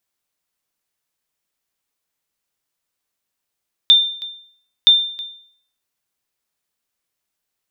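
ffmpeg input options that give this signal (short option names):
-f lavfi -i "aevalsrc='0.668*(sin(2*PI*3590*mod(t,0.97))*exp(-6.91*mod(t,0.97)/0.58)+0.1*sin(2*PI*3590*max(mod(t,0.97)-0.32,0))*exp(-6.91*max(mod(t,0.97)-0.32,0)/0.58))':d=1.94:s=44100"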